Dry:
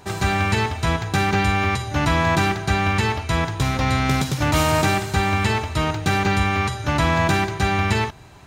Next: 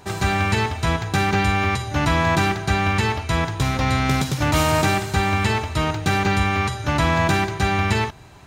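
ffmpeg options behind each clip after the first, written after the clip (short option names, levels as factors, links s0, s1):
-af anull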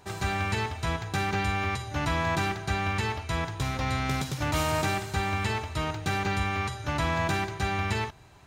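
-af "equalizer=f=220:w=1.1:g=-2.5,volume=0.398"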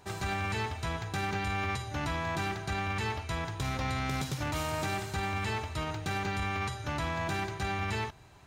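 -af "alimiter=limit=0.0794:level=0:latency=1:release=13,volume=0.794"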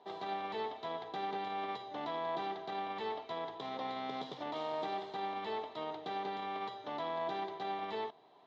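-af "highpass=f=220:w=0.5412,highpass=f=220:w=1.3066,equalizer=f=450:t=q:w=4:g=8,equalizer=f=700:t=q:w=4:g=9,equalizer=f=1000:t=q:w=4:g=5,equalizer=f=1500:t=q:w=4:g=-9,equalizer=f=2500:t=q:w=4:g=-10,equalizer=f=3500:t=q:w=4:g=7,lowpass=f=3900:w=0.5412,lowpass=f=3900:w=1.3066,volume=0.447"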